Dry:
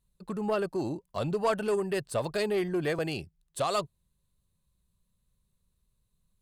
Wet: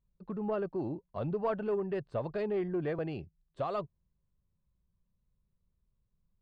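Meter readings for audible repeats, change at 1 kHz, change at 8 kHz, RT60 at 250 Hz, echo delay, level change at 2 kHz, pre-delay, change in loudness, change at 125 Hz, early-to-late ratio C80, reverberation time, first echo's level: no echo, -6.0 dB, under -30 dB, no reverb, no echo, -10.0 dB, no reverb, -4.5 dB, -2.5 dB, no reverb, no reverb, no echo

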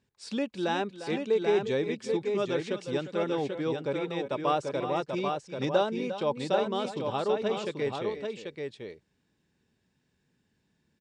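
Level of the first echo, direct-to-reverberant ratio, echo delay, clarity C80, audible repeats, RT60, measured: -11.5 dB, no reverb, 351 ms, no reverb, 2, no reverb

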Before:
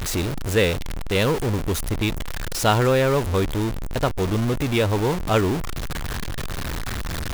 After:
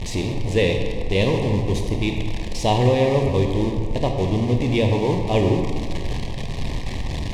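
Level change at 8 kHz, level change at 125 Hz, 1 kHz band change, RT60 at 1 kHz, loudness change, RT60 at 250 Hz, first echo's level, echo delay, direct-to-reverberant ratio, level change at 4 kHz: -6.5 dB, +2.5 dB, -0.5 dB, 1.9 s, +1.5 dB, 2.1 s, no echo, no echo, 3.0 dB, -1.0 dB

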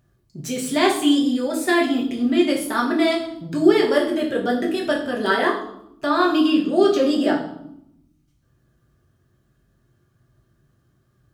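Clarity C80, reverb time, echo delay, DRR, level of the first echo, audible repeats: 10.5 dB, 0.80 s, no echo, -2.5 dB, no echo, no echo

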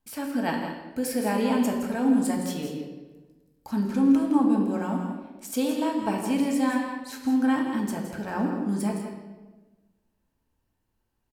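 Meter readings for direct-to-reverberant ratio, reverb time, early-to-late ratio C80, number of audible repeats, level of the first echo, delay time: -0.5 dB, 1.2 s, 4.5 dB, 1, -9.5 dB, 165 ms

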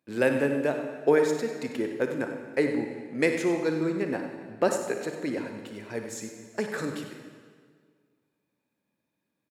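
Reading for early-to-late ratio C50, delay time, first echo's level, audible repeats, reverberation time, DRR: 4.5 dB, 57 ms, -12.5 dB, 2, 1.8 s, 4.0 dB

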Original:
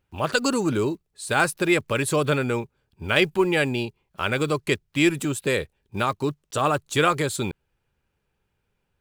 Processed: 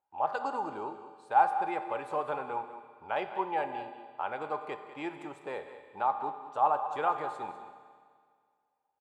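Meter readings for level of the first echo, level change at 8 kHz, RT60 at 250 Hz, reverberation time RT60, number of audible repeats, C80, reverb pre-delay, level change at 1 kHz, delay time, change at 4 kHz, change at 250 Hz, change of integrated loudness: -13.0 dB, under -30 dB, 1.9 s, 1.9 s, 1, 8.5 dB, 5 ms, -0.5 dB, 197 ms, -23.5 dB, -19.0 dB, -9.5 dB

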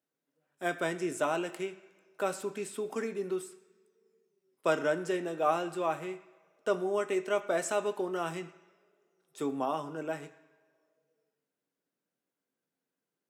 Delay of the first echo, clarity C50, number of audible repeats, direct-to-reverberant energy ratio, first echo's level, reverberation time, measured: no echo, 14.0 dB, no echo, 7.0 dB, no echo, 2.1 s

